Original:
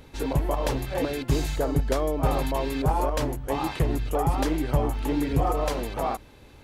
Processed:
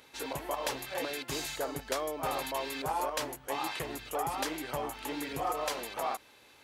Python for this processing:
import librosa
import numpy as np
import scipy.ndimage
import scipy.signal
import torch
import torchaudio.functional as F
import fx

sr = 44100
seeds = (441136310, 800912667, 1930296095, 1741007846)

y = fx.highpass(x, sr, hz=1300.0, slope=6)